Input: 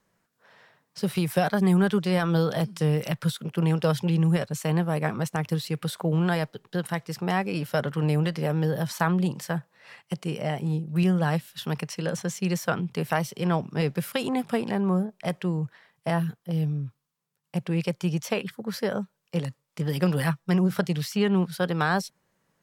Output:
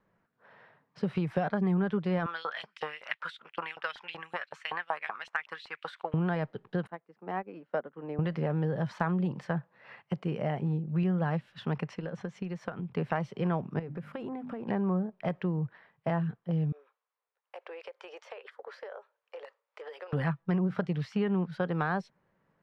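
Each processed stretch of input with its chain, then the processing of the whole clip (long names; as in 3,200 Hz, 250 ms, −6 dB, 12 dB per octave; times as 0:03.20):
0:02.26–0:06.14: transient designer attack +4 dB, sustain −5 dB + auto-filter high-pass saw up 5.3 Hz 820–3,700 Hz
0:06.87–0:08.19: high-pass filter 230 Hz 24 dB per octave + high-shelf EQ 2,500 Hz −11.5 dB + expander for the loud parts 2.5 to 1, over −37 dBFS
0:11.95–0:12.97: transient designer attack +10 dB, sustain −1 dB + downward compressor 8 to 1, threshold −32 dBFS
0:13.79–0:14.69: parametric band 4,700 Hz −8 dB 2.2 octaves + mains-hum notches 50/100/150/200/250/300 Hz + downward compressor 8 to 1, threshold −34 dBFS
0:16.72–0:20.13: Butterworth high-pass 450 Hz 48 dB per octave + downward compressor 16 to 1, threshold −38 dBFS
whole clip: low-pass filter 2,000 Hz 12 dB per octave; downward compressor 2.5 to 1, threshold −28 dBFS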